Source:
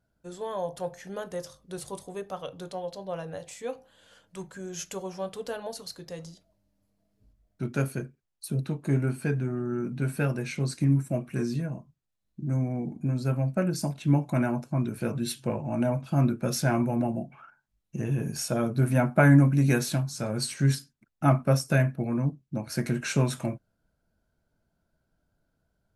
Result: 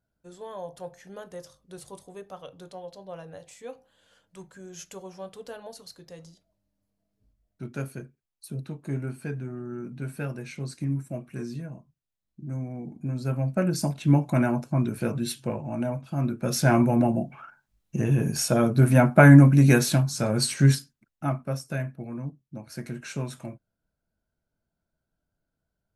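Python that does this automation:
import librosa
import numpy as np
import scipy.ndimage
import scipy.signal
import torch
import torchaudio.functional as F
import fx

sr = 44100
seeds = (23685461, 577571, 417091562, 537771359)

y = fx.gain(x, sr, db=fx.line((12.77, -5.5), (13.75, 3.0), (14.93, 3.0), (16.17, -4.5), (16.72, 5.5), (20.65, 5.5), (21.38, -7.5)))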